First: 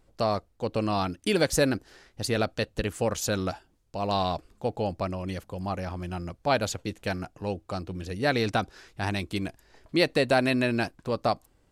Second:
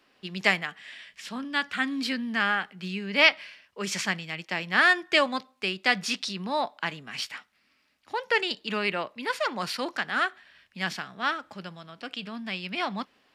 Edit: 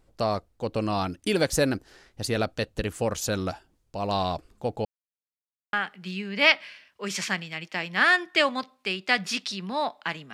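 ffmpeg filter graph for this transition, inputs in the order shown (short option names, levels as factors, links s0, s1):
-filter_complex "[0:a]apad=whole_dur=10.33,atrim=end=10.33,asplit=2[s0][s1];[s0]atrim=end=4.85,asetpts=PTS-STARTPTS,afade=t=out:st=4.846:d=0.004:c=hsin[s2];[s1]atrim=start=4.85:end=5.73,asetpts=PTS-STARTPTS,volume=0[s3];[1:a]atrim=start=2.5:end=7.1,asetpts=PTS-STARTPTS,afade=t=in:d=0.004:c=hsin[s4];[s2][s3][s4]concat=n=3:v=0:a=1"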